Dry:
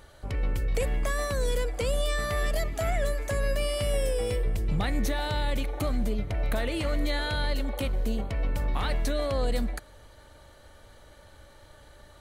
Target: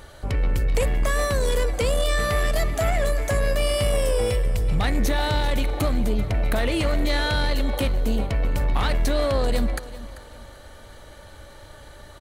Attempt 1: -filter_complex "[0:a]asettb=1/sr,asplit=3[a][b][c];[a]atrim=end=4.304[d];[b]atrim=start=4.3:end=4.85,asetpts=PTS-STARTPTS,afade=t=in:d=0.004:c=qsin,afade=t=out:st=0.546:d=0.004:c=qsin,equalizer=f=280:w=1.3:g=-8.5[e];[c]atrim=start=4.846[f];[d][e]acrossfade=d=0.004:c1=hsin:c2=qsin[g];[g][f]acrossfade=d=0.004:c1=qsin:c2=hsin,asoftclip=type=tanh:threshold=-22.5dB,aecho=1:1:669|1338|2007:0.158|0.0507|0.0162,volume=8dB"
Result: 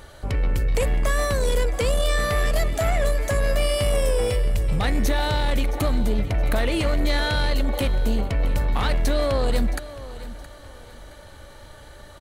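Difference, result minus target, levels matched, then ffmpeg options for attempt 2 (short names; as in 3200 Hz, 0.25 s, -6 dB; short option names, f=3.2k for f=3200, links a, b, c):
echo 0.279 s late
-filter_complex "[0:a]asettb=1/sr,asplit=3[a][b][c];[a]atrim=end=4.304[d];[b]atrim=start=4.3:end=4.85,asetpts=PTS-STARTPTS,afade=t=in:d=0.004:c=qsin,afade=t=out:st=0.546:d=0.004:c=qsin,equalizer=f=280:w=1.3:g=-8.5[e];[c]atrim=start=4.846[f];[d][e]acrossfade=d=0.004:c1=hsin:c2=qsin[g];[g][f]acrossfade=d=0.004:c1=qsin:c2=hsin,asoftclip=type=tanh:threshold=-22.5dB,aecho=1:1:390|780|1170:0.158|0.0507|0.0162,volume=8dB"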